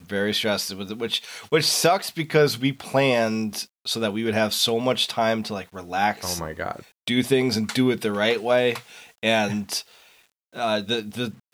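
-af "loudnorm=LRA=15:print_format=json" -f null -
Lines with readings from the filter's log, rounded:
"input_i" : "-23.7",
"input_tp" : "-7.5",
"input_lra" : "4.1",
"input_thresh" : "-34.1",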